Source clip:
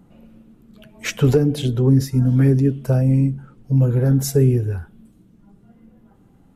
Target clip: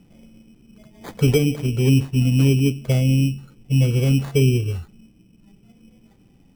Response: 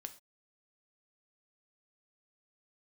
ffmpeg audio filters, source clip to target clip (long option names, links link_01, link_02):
-af "tiltshelf=frequency=1400:gain=6,acrusher=samples=16:mix=1:aa=0.000001,volume=-7dB"